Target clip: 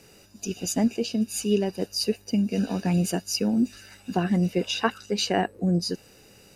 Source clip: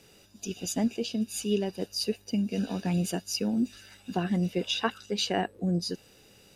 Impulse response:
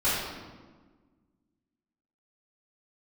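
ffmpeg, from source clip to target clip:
-af "equalizer=f=3400:w=5.4:g=-10,volume=1.68"

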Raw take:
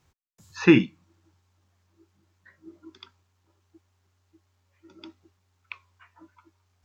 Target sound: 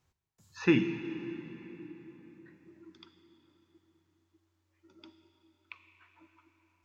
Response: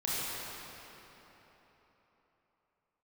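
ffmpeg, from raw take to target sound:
-filter_complex "[0:a]asplit=2[s0][s1];[1:a]atrim=start_sample=2205,asetrate=37044,aresample=44100,adelay=8[s2];[s1][s2]afir=irnorm=-1:irlink=0,volume=0.15[s3];[s0][s3]amix=inputs=2:normalize=0,volume=0.376"

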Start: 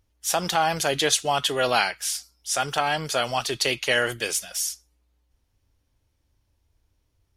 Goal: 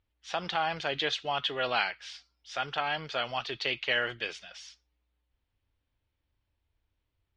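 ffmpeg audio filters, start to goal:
-af "lowpass=f=3700:w=0.5412,lowpass=f=3700:w=1.3066,tiltshelf=f=1100:g=-3.5,volume=0.447"

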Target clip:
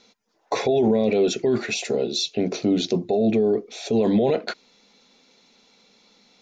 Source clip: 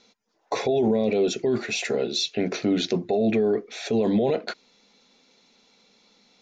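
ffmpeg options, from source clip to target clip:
-filter_complex "[0:a]asettb=1/sr,asplit=3[s0][s1][s2];[s0]atrim=end=1.744[s3];[s1]atrim=start=1.74:end=3.96,asetpts=PTS-STARTPTS,afade=t=in:d=0.004:c=qsin,afade=t=out:st=2.216:d=0.004:c=qsin,equalizer=f=1700:w=1.3:g=-11.5[s4];[s2]atrim=start=3.956[s5];[s3][s4]acrossfade=d=0.004:c1=hsin:c2=qsin[s6];[s6][s5]acrossfade=d=0.004:c1=qsin:c2=hsin,volume=1.33"

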